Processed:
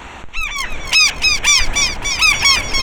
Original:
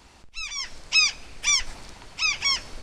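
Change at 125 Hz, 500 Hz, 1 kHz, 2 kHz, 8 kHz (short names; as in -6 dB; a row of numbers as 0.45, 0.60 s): +17.5, +16.5, +14.5, +12.0, +10.5 dB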